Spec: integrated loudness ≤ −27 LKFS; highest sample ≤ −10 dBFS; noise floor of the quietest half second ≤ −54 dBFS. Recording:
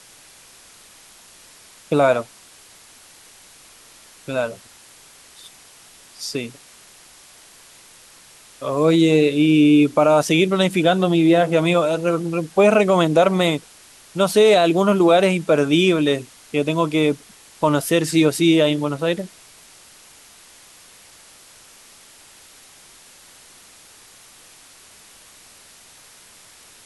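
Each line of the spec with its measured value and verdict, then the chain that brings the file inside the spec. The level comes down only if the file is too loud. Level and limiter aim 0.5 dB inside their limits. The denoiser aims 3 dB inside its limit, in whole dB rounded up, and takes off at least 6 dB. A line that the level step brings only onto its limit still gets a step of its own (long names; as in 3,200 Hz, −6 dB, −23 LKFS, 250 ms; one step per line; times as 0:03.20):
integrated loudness −17.5 LKFS: out of spec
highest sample −5.0 dBFS: out of spec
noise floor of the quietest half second −47 dBFS: out of spec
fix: level −10 dB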